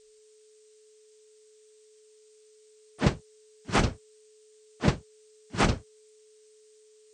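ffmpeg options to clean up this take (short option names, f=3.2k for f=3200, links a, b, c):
-af "bandreject=f=430:w=30,afftdn=nr=17:nf=-58"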